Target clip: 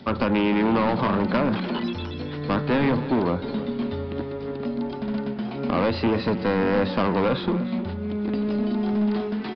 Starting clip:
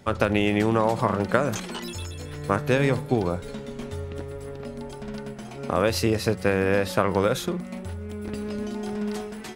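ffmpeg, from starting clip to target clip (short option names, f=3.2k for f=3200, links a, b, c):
-filter_complex "[0:a]highpass=f=76:p=1,aemphasis=mode=reproduction:type=50fm,acrossover=split=3100[a][b];[b]acompressor=threshold=-50dB:ratio=4:attack=1:release=60[c];[a][c]amix=inputs=2:normalize=0,equalizer=f=250:t=o:w=1:g=10,equalizer=f=1k:t=o:w=1:g=4,equalizer=f=4k:t=o:w=1:g=8,acrossover=split=430|3800[d][e][f];[f]acompressor=mode=upward:threshold=-57dB:ratio=2.5[g];[d][e][g]amix=inputs=3:normalize=0,asoftclip=type=tanh:threshold=-19dB,asplit=2[h][i];[i]aecho=0:1:308:0.188[j];[h][j]amix=inputs=2:normalize=0,aresample=11025,aresample=44100,volume=2dB"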